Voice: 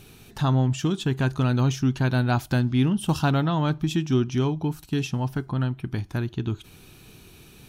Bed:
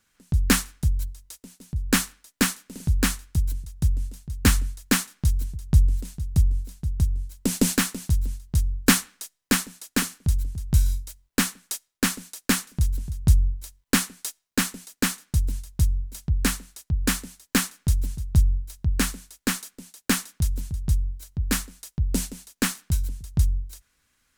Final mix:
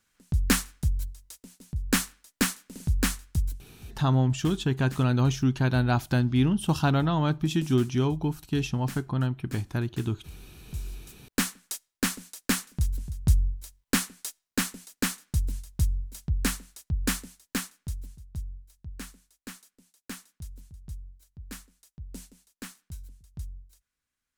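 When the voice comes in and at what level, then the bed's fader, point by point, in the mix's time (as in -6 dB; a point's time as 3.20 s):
3.60 s, -1.5 dB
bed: 3.48 s -3.5 dB
3.70 s -23.5 dB
10.46 s -23.5 dB
11.33 s -4 dB
17.16 s -4 dB
18.31 s -17.5 dB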